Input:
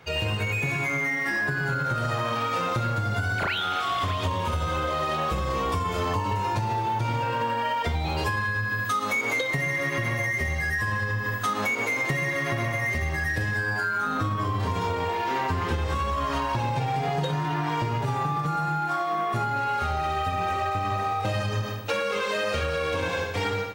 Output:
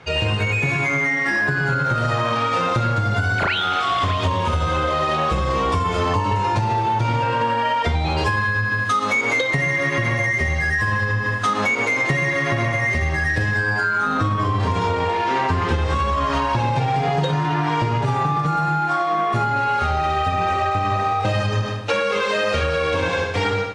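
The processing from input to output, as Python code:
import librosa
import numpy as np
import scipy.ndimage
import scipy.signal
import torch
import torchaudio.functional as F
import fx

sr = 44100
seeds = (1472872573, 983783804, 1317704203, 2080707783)

y = scipy.signal.sosfilt(scipy.signal.bessel(8, 6900.0, 'lowpass', norm='mag', fs=sr, output='sos'), x)
y = y * librosa.db_to_amplitude(6.5)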